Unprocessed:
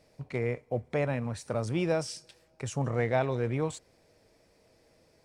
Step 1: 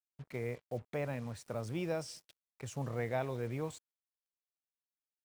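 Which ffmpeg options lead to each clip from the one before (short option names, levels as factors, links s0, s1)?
-af "acrusher=bits=7:mix=0:aa=0.5,volume=0.398"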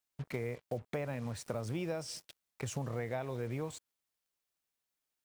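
-af "acompressor=threshold=0.00794:ratio=6,volume=2.51"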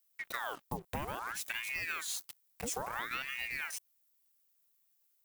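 -af "aemphasis=mode=production:type=50fm,aeval=exprs='val(0)*sin(2*PI*1300*n/s+1300*0.8/0.59*sin(2*PI*0.59*n/s))':c=same,volume=1.19"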